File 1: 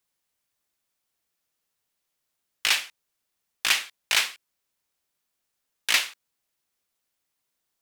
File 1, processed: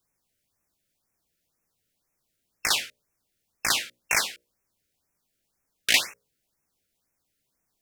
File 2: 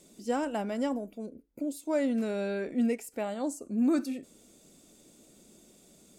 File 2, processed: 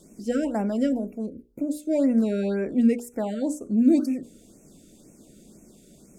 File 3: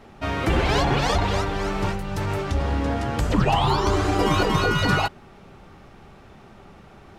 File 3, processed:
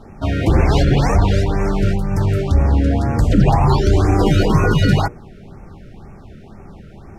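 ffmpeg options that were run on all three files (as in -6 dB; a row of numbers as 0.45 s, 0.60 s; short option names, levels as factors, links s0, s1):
-filter_complex "[0:a]lowshelf=f=390:g=10.5,asplit=2[s0][s1];[s1]asoftclip=type=tanh:threshold=0.335,volume=0.531[s2];[s0][s2]amix=inputs=2:normalize=0,bandreject=f=60:t=h:w=6,bandreject=f=120:t=h:w=6,bandreject=f=180:t=h:w=6,bandreject=f=240:t=h:w=6,bandreject=f=300:t=h:w=6,bandreject=f=360:t=h:w=6,bandreject=f=420:t=h:w=6,bandreject=f=480:t=h:w=6,bandreject=f=540:t=h:w=6,bandreject=f=600:t=h:w=6,afftfilt=real='re*(1-between(b*sr/1024,890*pow(3900/890,0.5+0.5*sin(2*PI*2*pts/sr))/1.41,890*pow(3900/890,0.5+0.5*sin(2*PI*2*pts/sr))*1.41))':imag='im*(1-between(b*sr/1024,890*pow(3900/890,0.5+0.5*sin(2*PI*2*pts/sr))/1.41,890*pow(3900/890,0.5+0.5*sin(2*PI*2*pts/sr))*1.41))':win_size=1024:overlap=0.75,volume=0.794"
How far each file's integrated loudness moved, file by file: -0.5 LU, +7.0 LU, +6.5 LU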